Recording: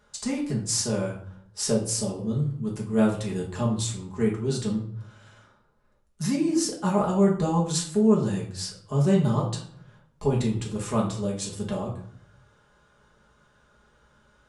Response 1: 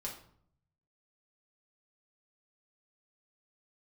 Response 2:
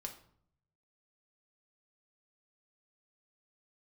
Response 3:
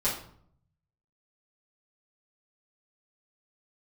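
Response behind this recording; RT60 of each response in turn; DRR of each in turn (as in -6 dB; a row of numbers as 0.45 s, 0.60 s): 1; 0.60 s, 0.60 s, 0.60 s; -3.5 dB, 2.5 dB, -11.0 dB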